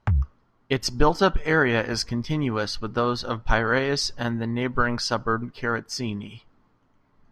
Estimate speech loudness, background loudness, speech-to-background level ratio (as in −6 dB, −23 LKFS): −24.5 LKFS, −27.5 LKFS, 3.0 dB